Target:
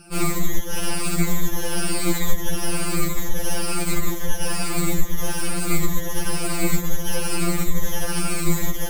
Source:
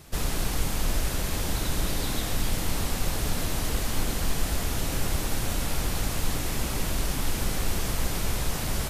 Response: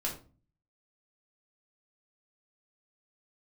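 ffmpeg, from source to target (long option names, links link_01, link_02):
-af "afftfilt=real='re*pow(10,24/40*sin(2*PI*(1.1*log(max(b,1)*sr/1024/100)/log(2)-(-1.1)*(pts-256)/sr)))':imag='im*pow(10,24/40*sin(2*PI*(1.1*log(max(b,1)*sr/1024/100)/log(2)-(-1.1)*(pts-256)/sr)))':win_size=1024:overlap=0.75,equalizer=frequency=250:width_type=o:width=0.67:gain=12,equalizer=frequency=630:width_type=o:width=0.67:gain=-8,equalizer=frequency=4000:width_type=o:width=0.67:gain=-7,acompressor=threshold=-19dB:ratio=8,aeval=exprs='0.237*(cos(1*acos(clip(val(0)/0.237,-1,1)))-cos(1*PI/2))+0.0473*(cos(4*acos(clip(val(0)/0.237,-1,1)))-cos(4*PI/2))+0.0335*(cos(8*acos(clip(val(0)/0.237,-1,1)))-cos(8*PI/2))':channel_layout=same,afftfilt=real='re*2.83*eq(mod(b,8),0)':imag='im*2.83*eq(mod(b,8),0)':win_size=2048:overlap=0.75,volume=1.5dB"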